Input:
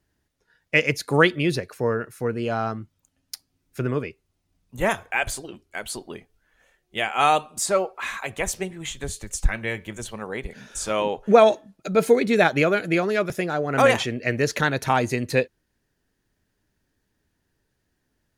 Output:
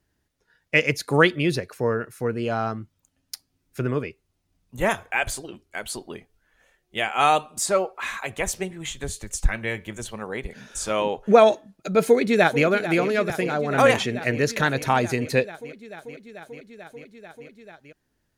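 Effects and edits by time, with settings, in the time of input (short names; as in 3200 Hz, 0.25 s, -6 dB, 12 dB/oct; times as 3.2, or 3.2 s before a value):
12.02–12.64 echo throw 0.44 s, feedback 85%, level -12.5 dB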